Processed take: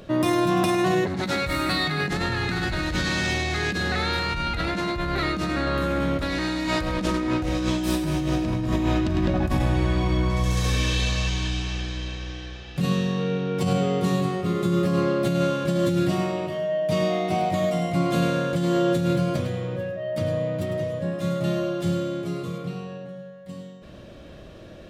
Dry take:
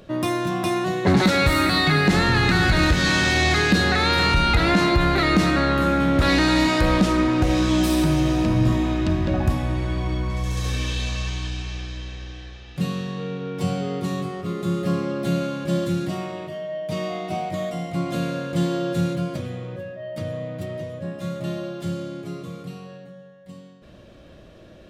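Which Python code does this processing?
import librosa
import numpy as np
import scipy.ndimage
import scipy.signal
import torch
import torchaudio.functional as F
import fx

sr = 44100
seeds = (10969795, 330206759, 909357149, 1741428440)

y = fx.high_shelf(x, sr, hz=7100.0, db=-11.0, at=(22.58, 23.09))
y = y + 10.0 ** (-9.5 / 20.0) * np.pad(y, (int(103 * sr / 1000.0), 0))[:len(y)]
y = fx.over_compress(y, sr, threshold_db=-23.0, ratio=-1.0)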